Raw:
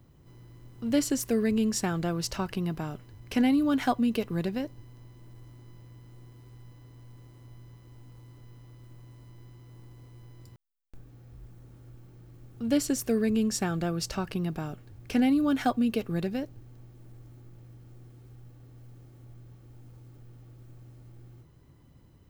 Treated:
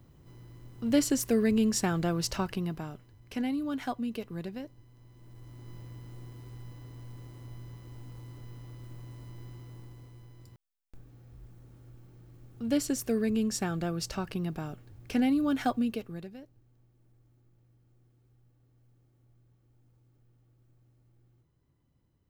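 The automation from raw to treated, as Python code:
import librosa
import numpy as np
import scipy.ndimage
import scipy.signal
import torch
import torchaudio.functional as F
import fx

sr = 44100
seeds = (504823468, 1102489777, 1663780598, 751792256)

y = fx.gain(x, sr, db=fx.line((2.38, 0.5), (3.16, -8.0), (4.91, -8.0), (5.73, 4.5), (9.57, 4.5), (10.3, -2.5), (15.8, -2.5), (16.36, -15.0)))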